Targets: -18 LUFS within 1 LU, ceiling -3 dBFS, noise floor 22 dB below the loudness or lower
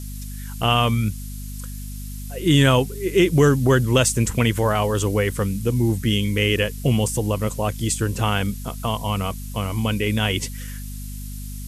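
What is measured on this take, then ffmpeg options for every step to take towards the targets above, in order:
hum 50 Hz; harmonics up to 250 Hz; hum level -30 dBFS; noise floor -32 dBFS; noise floor target -43 dBFS; loudness -21.0 LUFS; peak -5.0 dBFS; loudness target -18.0 LUFS
-> -af "bandreject=f=50:t=h:w=6,bandreject=f=100:t=h:w=6,bandreject=f=150:t=h:w=6,bandreject=f=200:t=h:w=6,bandreject=f=250:t=h:w=6"
-af "afftdn=nr=11:nf=-32"
-af "volume=3dB,alimiter=limit=-3dB:level=0:latency=1"

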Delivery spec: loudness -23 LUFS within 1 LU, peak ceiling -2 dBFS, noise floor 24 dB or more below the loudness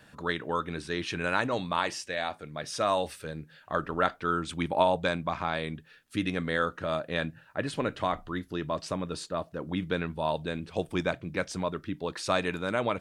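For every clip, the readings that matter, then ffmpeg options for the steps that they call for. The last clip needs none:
loudness -31.5 LUFS; peak -8.5 dBFS; loudness target -23.0 LUFS
-> -af "volume=8.5dB,alimiter=limit=-2dB:level=0:latency=1"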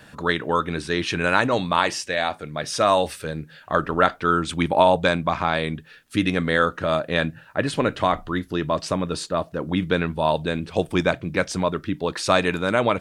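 loudness -23.0 LUFS; peak -2.0 dBFS; noise floor -49 dBFS

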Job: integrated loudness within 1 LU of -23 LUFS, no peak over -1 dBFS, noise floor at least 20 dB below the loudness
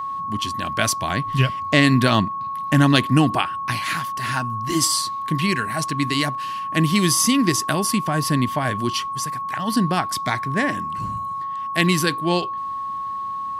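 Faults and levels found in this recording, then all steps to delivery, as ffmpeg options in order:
steady tone 1100 Hz; tone level -25 dBFS; loudness -21.0 LUFS; peak -1.0 dBFS; loudness target -23.0 LUFS
-> -af "bandreject=f=1.1k:w=30"
-af "volume=-2dB"

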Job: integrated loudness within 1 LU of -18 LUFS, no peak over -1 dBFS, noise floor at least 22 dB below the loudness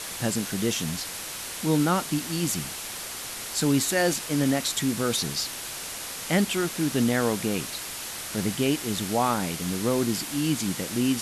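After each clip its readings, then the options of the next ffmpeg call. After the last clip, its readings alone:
noise floor -36 dBFS; noise floor target -49 dBFS; loudness -26.5 LUFS; peak -10.5 dBFS; loudness target -18.0 LUFS
-> -af "afftdn=nr=13:nf=-36"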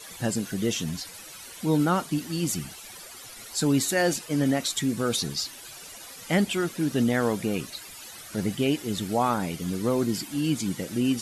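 noise floor -44 dBFS; noise floor target -49 dBFS
-> -af "afftdn=nr=6:nf=-44"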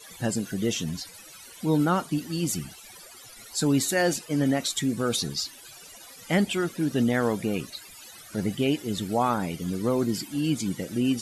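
noise floor -47 dBFS; noise floor target -49 dBFS
-> -af "afftdn=nr=6:nf=-47"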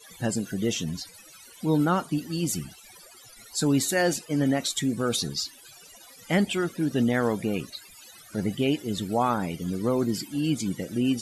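noise floor -50 dBFS; loudness -27.0 LUFS; peak -11.5 dBFS; loudness target -18.0 LUFS
-> -af "volume=9dB"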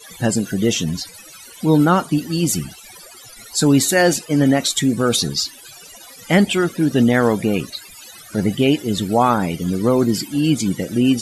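loudness -18.0 LUFS; peak -2.5 dBFS; noise floor -41 dBFS

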